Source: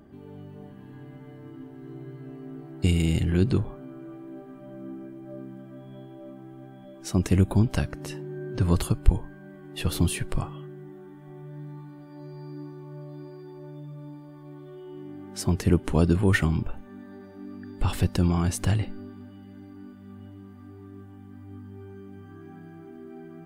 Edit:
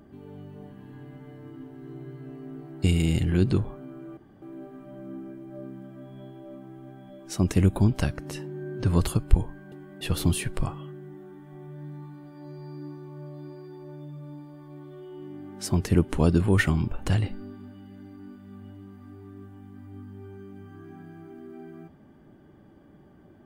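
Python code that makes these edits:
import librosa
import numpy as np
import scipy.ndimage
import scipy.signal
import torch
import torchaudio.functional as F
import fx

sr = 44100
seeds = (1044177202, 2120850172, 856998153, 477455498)

y = fx.edit(x, sr, fx.insert_room_tone(at_s=4.17, length_s=0.25),
    fx.reverse_span(start_s=9.47, length_s=0.29),
    fx.cut(start_s=16.81, length_s=1.82), tone=tone)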